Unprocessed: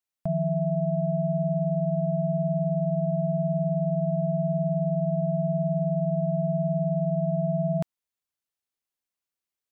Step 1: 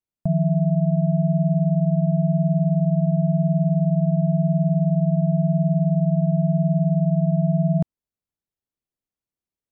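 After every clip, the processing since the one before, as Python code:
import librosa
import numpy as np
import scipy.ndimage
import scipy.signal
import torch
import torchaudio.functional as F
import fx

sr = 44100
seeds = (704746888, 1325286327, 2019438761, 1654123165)

y = fx.tilt_shelf(x, sr, db=9.0, hz=630.0)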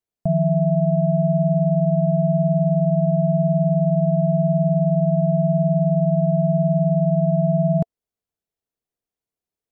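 y = fx.small_body(x, sr, hz=(450.0, 680.0), ring_ms=30, db=8)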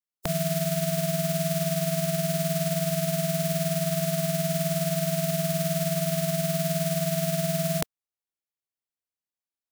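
y = fx.spec_flatten(x, sr, power=0.29)
y = y * librosa.db_to_amplitude(-7.5)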